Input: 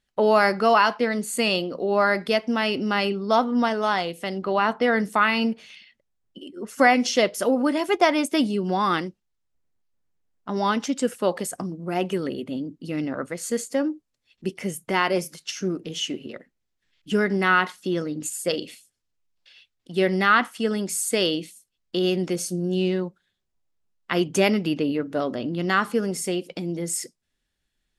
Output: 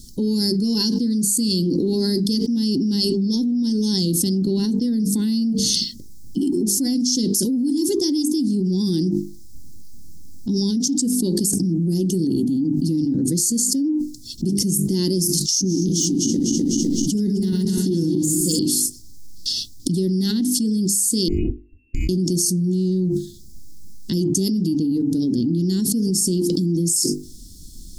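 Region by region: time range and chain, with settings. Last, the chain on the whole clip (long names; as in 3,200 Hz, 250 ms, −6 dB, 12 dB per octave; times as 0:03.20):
0:15.51–0:18.59: feedback delay that plays each chunk backwards 126 ms, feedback 62%, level −6 dB + de-essing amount 60%
0:21.28–0:22.09: voice inversion scrambler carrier 2,700 Hz + comb filter 2.9 ms, depth 75% + downward compressor 2 to 1, threshold −25 dBFS
whole clip: elliptic band-stop filter 300–5,000 Hz, stop band 40 dB; mains-hum notches 50/100/150/200/250/300/350/400/450 Hz; envelope flattener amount 100%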